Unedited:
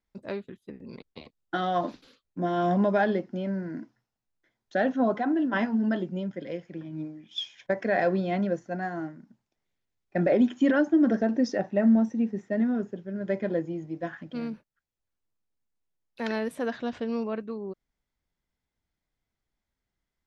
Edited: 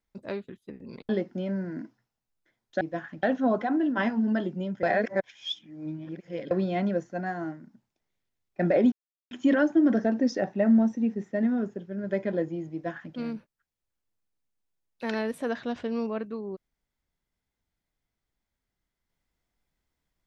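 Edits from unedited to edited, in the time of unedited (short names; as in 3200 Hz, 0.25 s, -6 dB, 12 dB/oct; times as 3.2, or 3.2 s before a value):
1.09–3.07 cut
6.39–8.07 reverse
10.48 insert silence 0.39 s
13.9–14.32 copy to 4.79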